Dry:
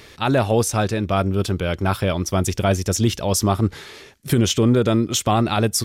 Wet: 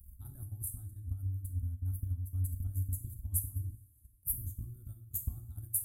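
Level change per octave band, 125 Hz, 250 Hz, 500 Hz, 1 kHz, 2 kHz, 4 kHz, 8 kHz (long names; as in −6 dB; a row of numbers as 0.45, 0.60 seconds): −15.0 dB, −35.5 dB, below −40 dB, below −40 dB, below −40 dB, below −40 dB, −15.5 dB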